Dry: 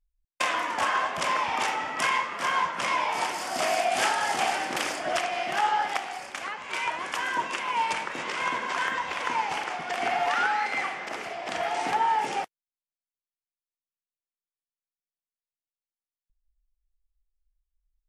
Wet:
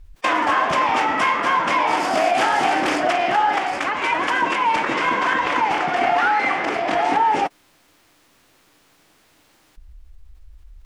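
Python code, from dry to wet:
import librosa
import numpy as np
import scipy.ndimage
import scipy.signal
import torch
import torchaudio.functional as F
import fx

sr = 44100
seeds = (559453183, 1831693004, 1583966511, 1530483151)

p1 = fx.lowpass(x, sr, hz=2300.0, slope=6)
p2 = fx.peak_eq(p1, sr, hz=300.0, db=7.5, octaves=0.31)
p3 = np.clip(p2, -10.0 ** (-23.0 / 20.0), 10.0 ** (-23.0 / 20.0))
p4 = p2 + F.gain(torch.from_numpy(p3), -10.0).numpy()
p5 = fx.stretch_vocoder(p4, sr, factor=0.6)
p6 = fx.env_flatten(p5, sr, amount_pct=50)
y = F.gain(torch.from_numpy(p6), 5.5).numpy()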